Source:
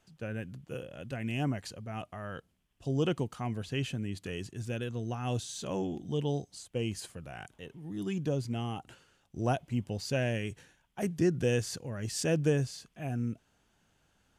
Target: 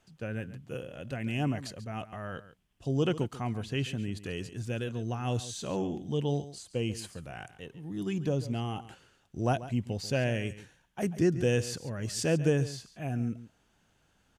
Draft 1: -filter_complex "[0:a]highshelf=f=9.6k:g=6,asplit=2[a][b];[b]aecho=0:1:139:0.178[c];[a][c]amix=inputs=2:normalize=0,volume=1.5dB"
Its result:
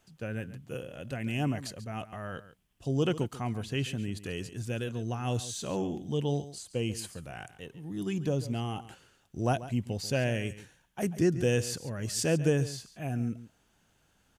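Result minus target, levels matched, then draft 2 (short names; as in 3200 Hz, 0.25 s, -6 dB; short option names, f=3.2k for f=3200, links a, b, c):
8000 Hz band +3.0 dB
-filter_complex "[0:a]highshelf=f=9.6k:g=-3,asplit=2[a][b];[b]aecho=0:1:139:0.178[c];[a][c]amix=inputs=2:normalize=0,volume=1.5dB"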